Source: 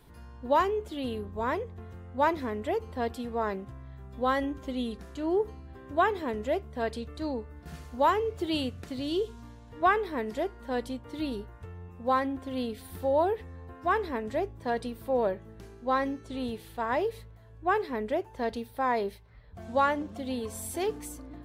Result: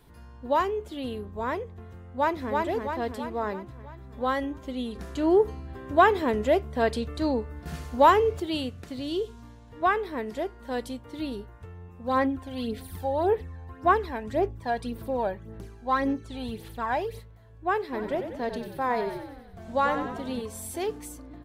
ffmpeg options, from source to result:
-filter_complex "[0:a]asplit=2[s0][s1];[s1]afade=t=in:st=2.05:d=0.01,afade=t=out:st=2.54:d=0.01,aecho=0:1:330|660|990|1320|1650|1980|2310|2640:0.749894|0.412442|0.226843|0.124764|0.06862|0.037741|0.0207576|0.0114167[s2];[s0][s2]amix=inputs=2:normalize=0,asettb=1/sr,asplit=3[s3][s4][s5];[s3]atrim=end=4.954[s6];[s4]atrim=start=4.95:end=8.4,asetpts=PTS-STARTPTS,afade=t=in:d=0.004:c=qsin,afade=t=out:st=3.446:d=0.004:c=qsin,acontrast=75[s7];[s5]atrim=start=8.396[s8];[s6][s7]acrossfade=d=0.004:c1=hsin:c2=qsin[s9];[s9][s8]acrossfade=d=0.004:c1=qsin:c2=hsin,asettb=1/sr,asplit=3[s10][s11][s12];[s10]atrim=end=10.654[s13];[s11]atrim=start=10.65:end=11.06,asetpts=PTS-STARTPTS,afade=t=in:d=0.004:c=qsin,afade=t=out:st=0.406:d=0.004:c=qsin,highshelf=f=4300:g=5.5[s14];[s12]atrim=start=11.056[s15];[s13][s14]acrossfade=d=0.004:c1=hsin:c2=qsin[s16];[s16][s15]acrossfade=d=0.004:c1=qsin:c2=hsin,asplit=3[s17][s18][s19];[s17]afade=t=out:st=12.02:d=0.02[s20];[s18]aphaser=in_gain=1:out_gain=1:delay=1.3:decay=0.54:speed=1.8:type=sinusoidal,afade=t=in:st=12.02:d=0.02,afade=t=out:st=17.18:d=0.02[s21];[s19]afade=t=in:st=17.18:d=0.02[s22];[s20][s21][s22]amix=inputs=3:normalize=0,asplit=3[s23][s24][s25];[s23]afade=t=out:st=17.92:d=0.02[s26];[s24]asplit=9[s27][s28][s29][s30][s31][s32][s33][s34][s35];[s28]adelay=93,afreqshift=-41,volume=0.398[s36];[s29]adelay=186,afreqshift=-82,volume=0.243[s37];[s30]adelay=279,afreqshift=-123,volume=0.148[s38];[s31]adelay=372,afreqshift=-164,volume=0.0902[s39];[s32]adelay=465,afreqshift=-205,volume=0.055[s40];[s33]adelay=558,afreqshift=-246,volume=0.0335[s41];[s34]adelay=651,afreqshift=-287,volume=0.0204[s42];[s35]adelay=744,afreqshift=-328,volume=0.0124[s43];[s27][s36][s37][s38][s39][s40][s41][s42][s43]amix=inputs=9:normalize=0,afade=t=in:st=17.92:d=0.02,afade=t=out:st=20.41:d=0.02[s44];[s25]afade=t=in:st=20.41:d=0.02[s45];[s26][s44][s45]amix=inputs=3:normalize=0"

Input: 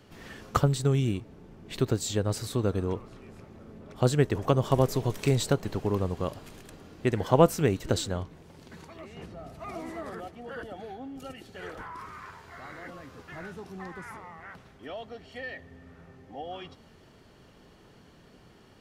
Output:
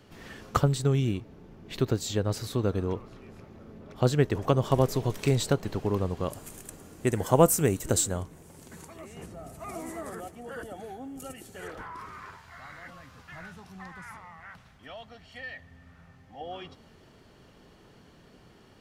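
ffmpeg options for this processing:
-filter_complex "[0:a]asettb=1/sr,asplit=3[s0][s1][s2];[s0]atrim=end=0.844[s3];[s1]atrim=start=0.84:end=4.3,asetpts=PTS-STARTPTS,afade=t=in:d=0.004:c=qsin,afade=t=out:st=3.456:d=0.004:c=qsin,equalizer=f=8400:t=o:w=0.35:g=-5.5[s4];[s2]atrim=start=4.296[s5];[s3][s4]acrossfade=d=0.004:c1=hsin:c2=qsin[s6];[s6][s5]acrossfade=d=0.004:c1=qsin:c2=hsin,asettb=1/sr,asplit=3[s7][s8][s9];[s7]atrim=end=6.304[s10];[s8]atrim=start=6.3:end=11.68,asetpts=PTS-STARTPTS,afade=t=in:d=0.004:c=qsin,afade=t=out:st=5.376:d=0.004:c=qsin,highshelf=f=6000:t=q:w=1.5:g=11[s11];[s9]atrim=start=11.676[s12];[s10][s11]acrossfade=d=0.004:c1=hsin:c2=qsin[s13];[s13][s12]acrossfade=d=0.004:c1=qsin:c2=hsin,asettb=1/sr,asplit=3[s14][s15][s16];[s14]atrim=end=12.364[s17];[s15]atrim=start=12.36:end=16.41,asetpts=PTS-STARTPTS,afade=t=in:d=0.004:c=qsin,afade=t=out:st=4.046:d=0.004:c=qsin,equalizer=f=380:t=o:w=1.1:g=-13.5[s18];[s16]atrim=start=16.406[s19];[s17][s18]acrossfade=d=0.004:c1=hsin:c2=qsin[s20];[s20][s19]acrossfade=d=0.004:c1=qsin:c2=hsin"

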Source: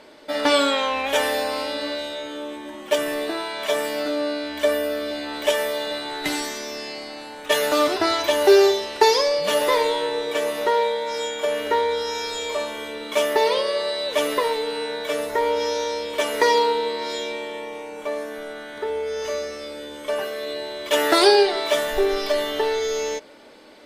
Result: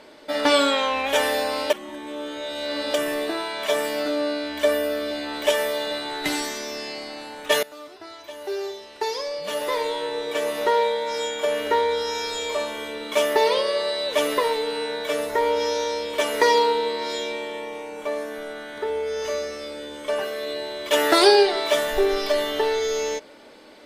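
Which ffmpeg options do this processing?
-filter_complex "[0:a]asettb=1/sr,asplit=3[s0][s1][s2];[s0]atrim=end=19.704[s3];[s1]atrim=start=19.7:end=20.28,asetpts=PTS-STARTPTS,afade=t=in:d=0.004:c=qsin,afade=t=out:st=0.576:d=0.004:c=qsin,equalizer=f=12000:w=5.1:g=-9.5[s4];[s2]atrim=start=20.276[s5];[s3][s4]acrossfade=d=0.004:c1=hsin:c2=qsin[s6];[s6][s5]acrossfade=d=0.004:c1=qsin:c2=hsin,asplit=4[s7][s8][s9][s10];[s7]atrim=end=1.702[s11];[s8]atrim=start=1.698:end=2.942,asetpts=PTS-STARTPTS,areverse[s12];[s9]atrim=start=2.938:end=7.63,asetpts=PTS-STARTPTS,afade=t=out:st=4.688:d=0.004:c=hsin:silence=0.0794328[s13];[s10]atrim=start=7.63,asetpts=PTS-STARTPTS,afade=t=in:d=3.05:c=qua:silence=0.0794328[s14];[s11][s12]acrossfade=d=0.004:c1=hsin:c2=hsin[s15];[s13][s14]concat=n=2:v=0:a=1[s16];[s15][s16]acrossfade=d=0.004:c1=hsin:c2=hsin"

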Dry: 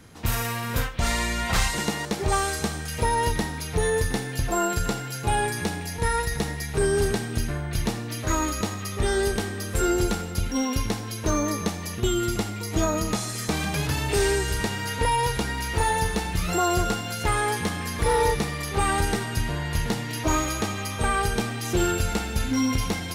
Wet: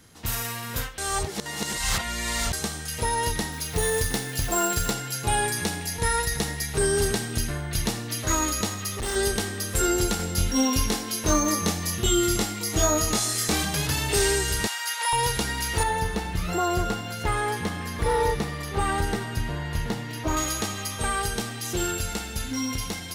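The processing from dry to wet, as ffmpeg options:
-filter_complex "[0:a]asettb=1/sr,asplit=3[s0][s1][s2];[s0]atrim=end=3.524[s3];[s1]atrim=start=3.52:end=4.91,asetpts=PTS-STARTPTS,afade=t=in:d=0.004:c=qsin,afade=t=out:st=1.386:d=0.004:c=qsin,acrusher=bits=4:mode=log:mix=0:aa=0.000001[s4];[s2]atrim=start=4.906[s5];[s3][s4]acrossfade=d=0.004:c1=hsin:c2=qsin[s6];[s6][s5]acrossfade=d=0.004:c1=qsin:c2=hsin,asettb=1/sr,asplit=3[s7][s8][s9];[s7]atrim=end=8.714[s10];[s8]atrim=start=8.71:end=9.16,asetpts=PTS-STARTPTS,afade=t=in:d=0.004:c=qsin,afade=t=out:st=0.446:d=0.004:c=qsin,asoftclip=type=hard:threshold=0.0473[s11];[s9]atrim=start=9.156[s12];[s10][s11]acrossfade=d=0.004:c1=hsin:c2=qsin[s13];[s13][s12]acrossfade=d=0.004:c1=qsin:c2=hsin,asettb=1/sr,asplit=3[s14][s15][s16];[s14]atrim=end=10.174[s17];[s15]atrim=start=10.17:end=13.63,asetpts=PTS-STARTPTS,afade=t=in:d=0.004:c=qsin,afade=t=out:st=3.456:d=0.004:c=qsin,asplit=2[s18][s19];[s19]adelay=23,volume=0.75[s20];[s18][s20]amix=inputs=2:normalize=0,atrim=end_sample=152586[s21];[s16]atrim=start=13.626[s22];[s17][s21]acrossfade=d=0.004:c1=hsin:c2=qsin[s23];[s23][s22]acrossfade=d=0.004:c1=qsin:c2=hsin,asettb=1/sr,asplit=3[s24][s25][s26];[s24]atrim=end=14.674[s27];[s25]atrim=start=14.67:end=15.13,asetpts=PTS-STARTPTS,afade=t=in:d=0.004:c=qsin,afade=t=out:st=0.456:d=0.004:c=qsin,highpass=f=770:w=0.5412,highpass=f=770:w=1.3066[s28];[s26]atrim=start=15.126[s29];[s27][s28]acrossfade=d=0.004:c1=hsin:c2=qsin[s30];[s30][s29]acrossfade=d=0.004:c1=qsin:c2=hsin,asettb=1/sr,asplit=3[s31][s32][s33];[s31]atrim=end=15.834[s34];[s32]atrim=start=15.83:end=20.37,asetpts=PTS-STARTPTS,afade=t=in:d=0.004:c=qsin,afade=t=out:st=4.536:d=0.004:c=qsin,equalizer=f=9600:t=o:w=2.8:g=-11.5[s35];[s33]atrim=start=20.366[s36];[s34][s35]acrossfade=d=0.004:c1=hsin:c2=qsin[s37];[s37][s36]acrossfade=d=0.004:c1=qsin:c2=hsin,asplit=3[s38][s39][s40];[s38]atrim=end=0.982[s41];[s39]atrim=start=0.978:end=2.532,asetpts=PTS-STARTPTS,areverse[s42];[s40]atrim=start=2.528[s43];[s41][s42]acrossfade=d=0.004:c1=hsin:c2=hsin[s44];[s44][s43]acrossfade=d=0.004:c1=hsin:c2=hsin,highshelf=f=2600:g=8,bandreject=f=2400:w=21,dynaudnorm=f=600:g=11:m=1.78,volume=0.501"

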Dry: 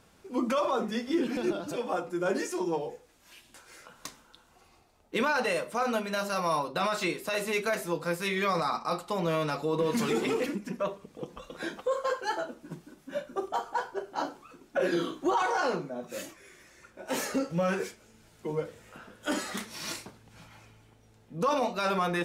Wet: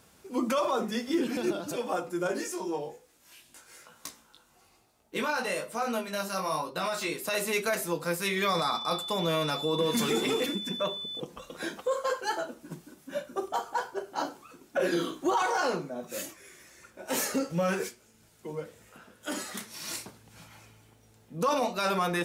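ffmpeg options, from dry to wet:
-filter_complex "[0:a]asettb=1/sr,asplit=3[s0][s1][s2];[s0]atrim=end=2.274[s3];[s1]atrim=start=2.27:end=7.12,asetpts=PTS-STARTPTS,afade=t=in:d=0.004:c=qsin,afade=t=out:st=4.846:d=0.004:c=qsin,flanger=delay=17:depth=4:speed=1.1[s4];[s2]atrim=start=7.116[s5];[s3][s4]acrossfade=d=0.004:c1=hsin:c2=qsin[s6];[s6][s5]acrossfade=d=0.004:c1=qsin:c2=hsin,asettb=1/sr,asplit=3[s7][s8][s9];[s7]atrim=end=8.424[s10];[s8]atrim=start=8.42:end=11.2,asetpts=PTS-STARTPTS,afade=t=in:d=0.004:c=qsin,afade=t=out:st=2.776:d=0.004:c=qsin,aeval=exprs='val(0)+0.0141*sin(2*PI*3500*n/s)':c=same[s11];[s9]atrim=start=11.196[s12];[s10][s11]acrossfade=d=0.004:c1=hsin:c2=qsin[s13];[s13][s12]acrossfade=d=0.004:c1=qsin:c2=hsin,asplit=3[s14][s15][s16];[s14]afade=t=out:st=17.88:d=0.02[s17];[s15]flanger=delay=0:depth=8.4:regen=86:speed=1.7:shape=sinusoidal,afade=t=in:st=17.88:d=0.02,afade=t=out:st=19.92:d=0.02[s18];[s16]afade=t=in:st=19.92:d=0.02[s19];[s17][s18][s19]amix=inputs=3:normalize=0,highpass=49,highshelf=f=6800:g=10"

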